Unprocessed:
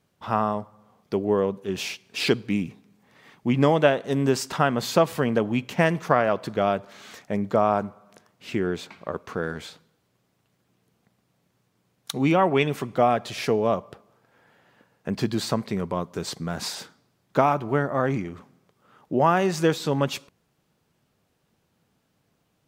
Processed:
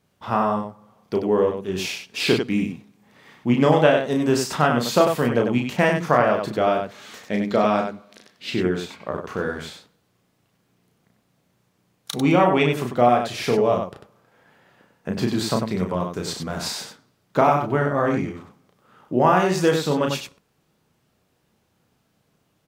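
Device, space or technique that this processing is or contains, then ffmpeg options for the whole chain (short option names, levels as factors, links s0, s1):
slapback doubling: -filter_complex "[0:a]asettb=1/sr,asplit=3[s0][s1][s2];[s0]atrim=end=7.244[s3];[s1]atrim=start=7.24:end=8.51,asetpts=PTS-STARTPTS,afade=t=in:d=0.004:c=qsin,afade=t=out:st=1.266:d=0.004:c=qsin,equalizer=f=125:t=o:w=1:g=-7,equalizer=f=250:t=o:w=1:g=4,equalizer=f=1000:t=o:w=1:g=-5,equalizer=f=2000:t=o:w=1:g=5,equalizer=f=4000:t=o:w=1:g=10[s4];[s2]atrim=start=8.506[s5];[s3][s4]acrossfade=d=0.004:c1=hsin:c2=qsin[s6];[s6][s5]acrossfade=d=0.004:c1=qsin:c2=hsin,asplit=3[s7][s8][s9];[s8]adelay=33,volume=0.631[s10];[s9]adelay=96,volume=0.531[s11];[s7][s10][s11]amix=inputs=3:normalize=0,volume=1.12"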